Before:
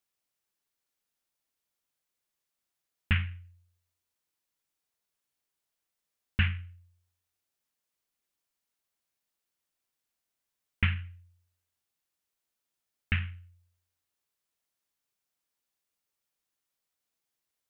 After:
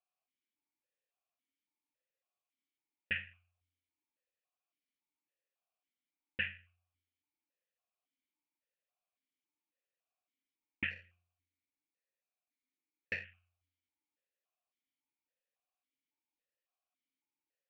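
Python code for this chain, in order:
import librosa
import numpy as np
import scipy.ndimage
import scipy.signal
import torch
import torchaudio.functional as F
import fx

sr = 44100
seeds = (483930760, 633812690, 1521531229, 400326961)

y = fx.lower_of_two(x, sr, delay_ms=0.48, at=(10.9, 13.23), fade=0.02)
y = fx.vowel_held(y, sr, hz=3.6)
y = F.gain(torch.from_numpy(y), 6.0).numpy()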